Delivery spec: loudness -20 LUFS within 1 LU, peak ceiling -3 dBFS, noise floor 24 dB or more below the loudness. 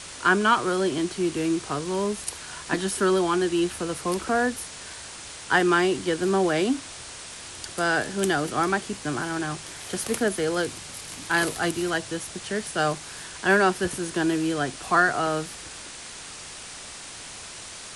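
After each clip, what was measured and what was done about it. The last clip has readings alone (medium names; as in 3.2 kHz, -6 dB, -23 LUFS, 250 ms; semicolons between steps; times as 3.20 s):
noise floor -40 dBFS; noise floor target -49 dBFS; loudness -25.0 LUFS; peak level -6.0 dBFS; loudness target -20.0 LUFS
-> noise reduction 9 dB, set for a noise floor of -40 dBFS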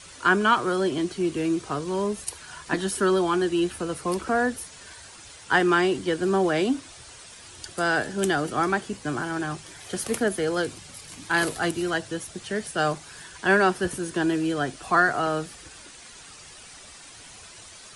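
noise floor -46 dBFS; noise floor target -49 dBFS
-> noise reduction 6 dB, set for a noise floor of -46 dBFS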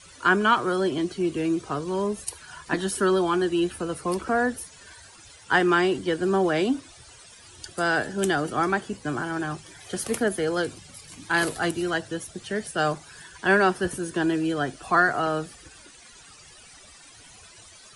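noise floor -50 dBFS; loudness -25.0 LUFS; peak level -6.5 dBFS; loudness target -20.0 LUFS
-> trim +5 dB; peak limiter -3 dBFS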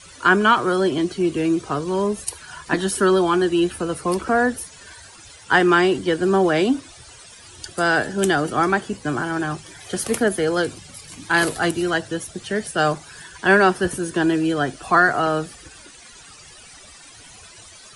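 loudness -20.0 LUFS; peak level -3.0 dBFS; noise floor -45 dBFS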